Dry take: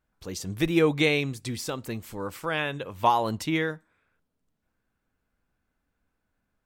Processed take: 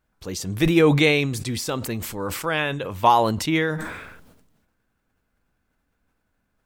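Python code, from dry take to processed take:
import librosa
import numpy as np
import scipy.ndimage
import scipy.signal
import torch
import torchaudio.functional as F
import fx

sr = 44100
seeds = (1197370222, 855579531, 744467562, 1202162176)

y = fx.sustainer(x, sr, db_per_s=46.0)
y = F.gain(torch.from_numpy(y), 4.5).numpy()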